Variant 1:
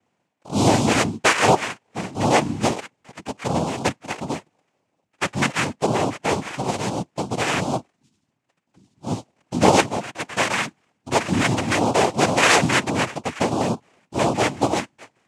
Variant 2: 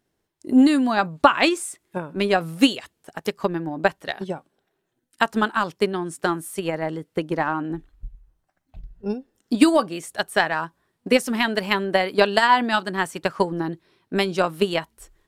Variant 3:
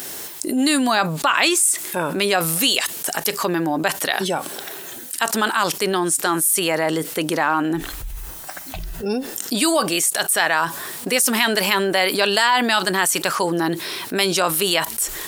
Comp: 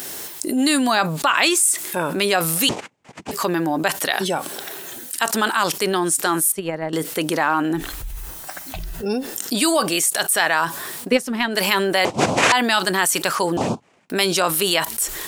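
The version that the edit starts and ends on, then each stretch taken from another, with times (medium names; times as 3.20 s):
3
2.69–3.31 s: from 1
6.52–6.93 s: from 2
11.06–11.55 s: from 2, crossfade 0.10 s
12.05–12.52 s: from 1
13.57–14.10 s: from 1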